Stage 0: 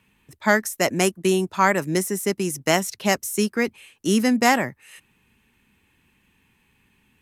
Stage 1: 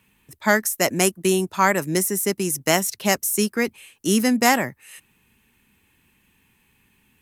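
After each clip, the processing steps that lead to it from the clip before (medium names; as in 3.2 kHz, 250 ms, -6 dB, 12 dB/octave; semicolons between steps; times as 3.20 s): treble shelf 9.1 kHz +11 dB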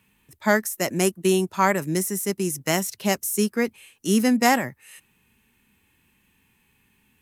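harmonic-percussive split percussive -6 dB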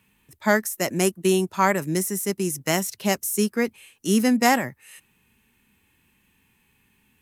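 no audible change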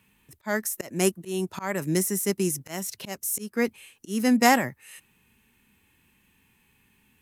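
slow attack 274 ms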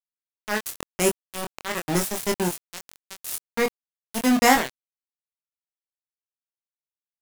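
small samples zeroed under -22 dBFS; doubling 23 ms -4 dB; trim +1 dB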